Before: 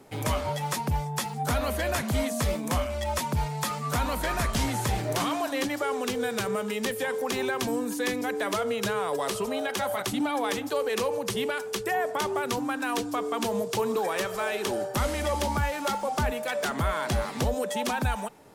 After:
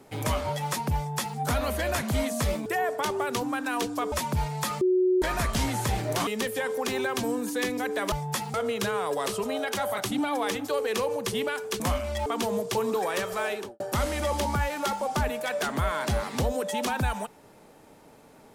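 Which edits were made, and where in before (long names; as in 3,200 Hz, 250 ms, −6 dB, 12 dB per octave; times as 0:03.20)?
0:00.96–0:01.38: duplicate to 0:08.56
0:02.66–0:03.12: swap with 0:11.82–0:13.28
0:03.81–0:04.22: beep over 368 Hz −19 dBFS
0:05.27–0:06.71: remove
0:14.49–0:14.82: fade out and dull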